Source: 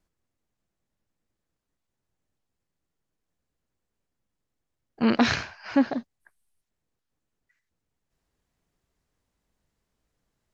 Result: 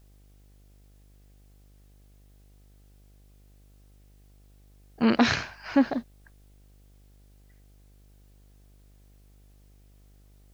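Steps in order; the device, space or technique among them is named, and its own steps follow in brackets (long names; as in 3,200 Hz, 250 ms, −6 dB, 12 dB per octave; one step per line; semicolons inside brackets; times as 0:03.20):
video cassette with head-switching buzz (hum with harmonics 50 Hz, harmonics 16, −56 dBFS −8 dB per octave; white noise bed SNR 36 dB)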